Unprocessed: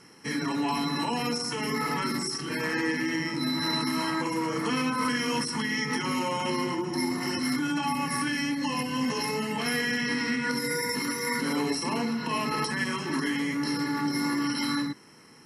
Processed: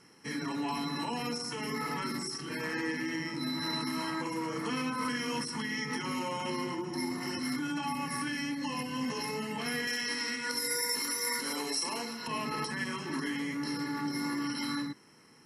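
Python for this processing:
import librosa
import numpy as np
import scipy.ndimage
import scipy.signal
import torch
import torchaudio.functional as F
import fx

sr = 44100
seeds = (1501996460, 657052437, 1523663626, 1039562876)

y = fx.bass_treble(x, sr, bass_db=-14, treble_db=9, at=(9.87, 12.28))
y = y * 10.0 ** (-6.0 / 20.0)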